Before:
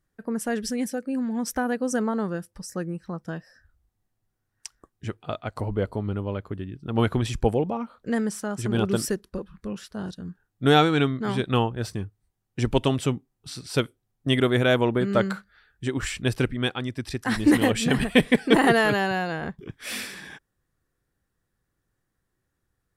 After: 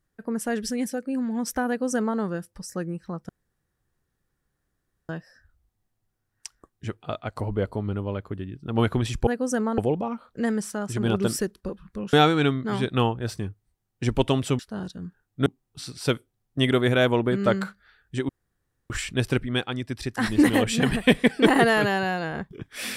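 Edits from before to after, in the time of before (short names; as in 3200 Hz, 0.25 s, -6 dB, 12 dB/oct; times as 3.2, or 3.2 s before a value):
1.68–2.19 copy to 7.47
3.29 insert room tone 1.80 s
9.82–10.69 move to 13.15
15.98 insert room tone 0.61 s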